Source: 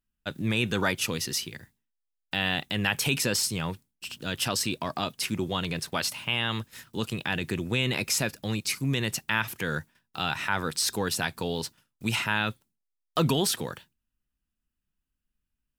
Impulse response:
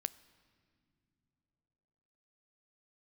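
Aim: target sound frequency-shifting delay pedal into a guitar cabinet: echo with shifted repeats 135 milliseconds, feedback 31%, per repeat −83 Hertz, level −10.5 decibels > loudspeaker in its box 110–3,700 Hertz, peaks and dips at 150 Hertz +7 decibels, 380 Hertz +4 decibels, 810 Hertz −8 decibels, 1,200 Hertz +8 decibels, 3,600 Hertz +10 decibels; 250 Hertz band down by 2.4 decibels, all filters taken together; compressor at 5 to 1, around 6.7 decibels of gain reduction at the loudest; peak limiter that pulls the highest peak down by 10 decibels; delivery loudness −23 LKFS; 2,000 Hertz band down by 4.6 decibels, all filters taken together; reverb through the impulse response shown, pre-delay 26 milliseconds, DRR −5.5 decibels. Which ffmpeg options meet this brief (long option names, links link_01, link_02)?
-filter_complex "[0:a]equalizer=frequency=250:width_type=o:gain=-6,equalizer=frequency=2000:width_type=o:gain=-8.5,acompressor=threshold=-30dB:ratio=5,alimiter=level_in=2dB:limit=-24dB:level=0:latency=1,volume=-2dB,asplit=2[link_01][link_02];[1:a]atrim=start_sample=2205,adelay=26[link_03];[link_02][link_03]afir=irnorm=-1:irlink=0,volume=6.5dB[link_04];[link_01][link_04]amix=inputs=2:normalize=0,asplit=4[link_05][link_06][link_07][link_08];[link_06]adelay=135,afreqshift=-83,volume=-10.5dB[link_09];[link_07]adelay=270,afreqshift=-166,volume=-20.7dB[link_10];[link_08]adelay=405,afreqshift=-249,volume=-30.8dB[link_11];[link_05][link_09][link_10][link_11]amix=inputs=4:normalize=0,highpass=110,equalizer=frequency=150:width_type=q:width=4:gain=7,equalizer=frequency=380:width_type=q:width=4:gain=4,equalizer=frequency=810:width_type=q:width=4:gain=-8,equalizer=frequency=1200:width_type=q:width=4:gain=8,equalizer=frequency=3600:width_type=q:width=4:gain=10,lowpass=frequency=3700:width=0.5412,lowpass=frequency=3700:width=1.3066,volume=7.5dB"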